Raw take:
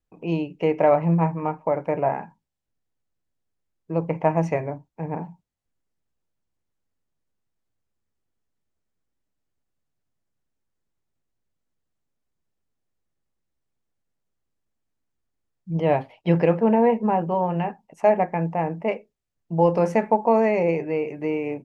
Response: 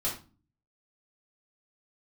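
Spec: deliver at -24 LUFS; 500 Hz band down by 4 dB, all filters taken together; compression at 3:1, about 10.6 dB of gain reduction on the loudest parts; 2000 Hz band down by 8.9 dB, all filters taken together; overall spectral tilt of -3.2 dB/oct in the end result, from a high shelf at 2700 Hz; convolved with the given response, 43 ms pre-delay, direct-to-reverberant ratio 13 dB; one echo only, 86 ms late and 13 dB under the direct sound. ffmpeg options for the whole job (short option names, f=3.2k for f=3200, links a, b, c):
-filter_complex "[0:a]equalizer=f=500:t=o:g=-4,equalizer=f=2k:t=o:g=-7.5,highshelf=f=2.7k:g=-7,acompressor=threshold=-31dB:ratio=3,aecho=1:1:86:0.224,asplit=2[a][b];[1:a]atrim=start_sample=2205,adelay=43[c];[b][c]afir=irnorm=-1:irlink=0,volume=-18.5dB[d];[a][d]amix=inputs=2:normalize=0,volume=9.5dB"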